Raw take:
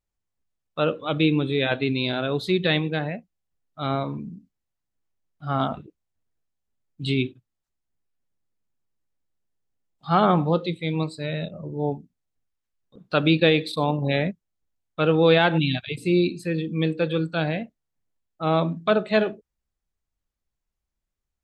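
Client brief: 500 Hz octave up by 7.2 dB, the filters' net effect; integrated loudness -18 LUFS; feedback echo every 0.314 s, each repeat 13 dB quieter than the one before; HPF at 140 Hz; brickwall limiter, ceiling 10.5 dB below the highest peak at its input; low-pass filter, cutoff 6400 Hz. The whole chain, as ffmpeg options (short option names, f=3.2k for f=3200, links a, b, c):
-af "highpass=140,lowpass=6.4k,equalizer=f=500:t=o:g=8.5,alimiter=limit=-11.5dB:level=0:latency=1,aecho=1:1:314|628|942:0.224|0.0493|0.0108,volume=5dB"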